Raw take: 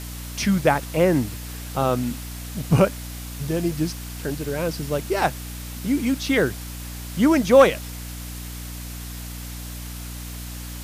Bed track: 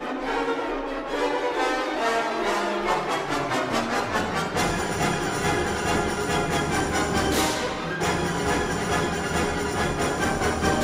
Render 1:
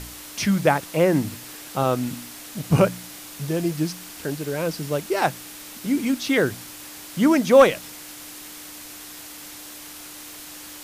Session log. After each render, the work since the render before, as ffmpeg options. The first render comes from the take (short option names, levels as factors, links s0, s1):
-af "bandreject=f=60:t=h:w=4,bandreject=f=120:t=h:w=4,bandreject=f=180:t=h:w=4,bandreject=f=240:t=h:w=4"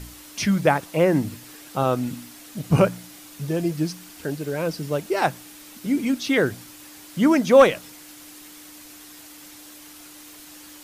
-af "afftdn=nr=6:nf=-40"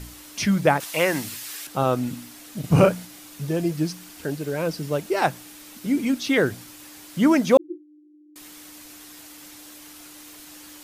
-filter_complex "[0:a]asettb=1/sr,asplit=3[s0][s1][s2];[s0]atrim=end=0.804[s3];[s1]atrim=start=0.8:end=1.67,asetpts=PTS-STARTPTS,afade=t=in:d=0.004:c=qsin,afade=t=out:st=0.866:d=0.004:c=qsin,tiltshelf=f=790:g=-10[s4];[s2]atrim=start=1.666[s5];[s3][s4]acrossfade=d=0.004:c1=hsin:c2=qsin[s6];[s6][s5]acrossfade=d=0.004:c1=qsin:c2=hsin,asettb=1/sr,asplit=3[s7][s8][s9];[s7]atrim=end=2.604[s10];[s8]atrim=start=2.6:end=3.05,asetpts=PTS-STARTPTS,afade=t=in:d=0.004:c=qsin,afade=t=out:st=0.446:d=0.004:c=qsin,asplit=2[s11][s12];[s12]adelay=38,volume=0.708[s13];[s11][s13]amix=inputs=2:normalize=0,atrim=end_sample=19845[s14];[s9]atrim=start=3.046[s15];[s10][s14]acrossfade=d=0.004:c1=hsin:c2=qsin[s16];[s16][s15]acrossfade=d=0.004:c1=qsin:c2=hsin,asettb=1/sr,asplit=3[s17][s18][s19];[s17]atrim=end=7.574[s20];[s18]atrim=start=7.57:end=8.36,asetpts=PTS-STARTPTS,afade=t=in:d=0.004:c=qsin,afade=t=out:st=0.786:d=0.004:c=qsin,asuperpass=centerf=330:order=20:qfactor=5.1[s21];[s19]atrim=start=8.356[s22];[s20][s21]acrossfade=d=0.004:c1=hsin:c2=qsin[s23];[s23][s22]acrossfade=d=0.004:c1=qsin:c2=hsin"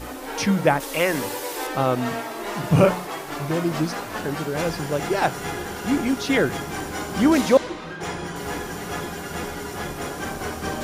-filter_complex "[1:a]volume=0.501[s0];[0:a][s0]amix=inputs=2:normalize=0"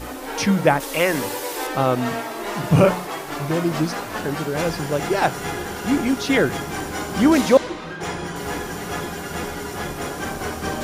-af "volume=1.26,alimiter=limit=0.794:level=0:latency=1"